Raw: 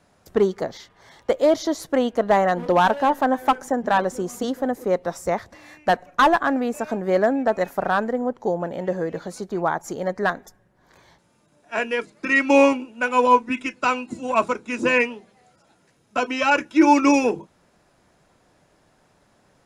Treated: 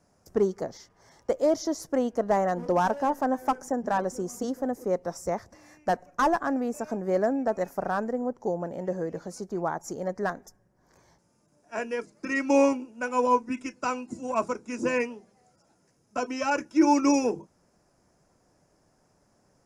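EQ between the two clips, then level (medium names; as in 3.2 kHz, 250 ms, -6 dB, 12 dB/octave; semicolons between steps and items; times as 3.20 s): tilt shelf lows +4 dB, about 1.3 kHz; resonant high shelf 4.5 kHz +6 dB, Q 3; -8.5 dB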